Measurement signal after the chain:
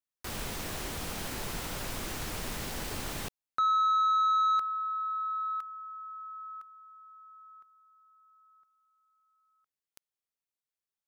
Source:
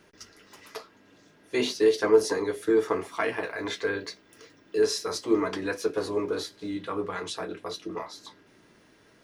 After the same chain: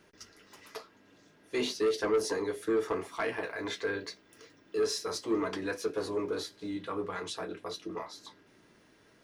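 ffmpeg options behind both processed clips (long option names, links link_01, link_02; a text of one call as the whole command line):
ffmpeg -i in.wav -af "asoftclip=type=tanh:threshold=-18.5dB,volume=-3.5dB" out.wav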